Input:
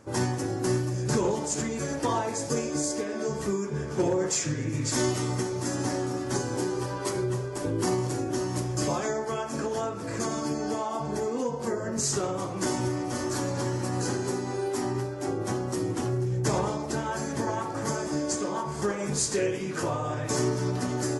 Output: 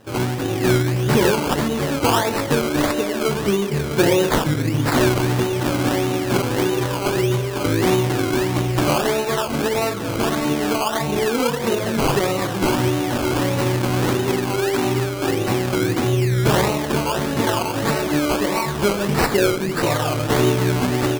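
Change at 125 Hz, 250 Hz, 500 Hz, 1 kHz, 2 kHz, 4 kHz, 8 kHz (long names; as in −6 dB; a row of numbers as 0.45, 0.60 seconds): +9.5, +9.5, +9.0, +9.5, +13.0, +12.0, +2.5 decibels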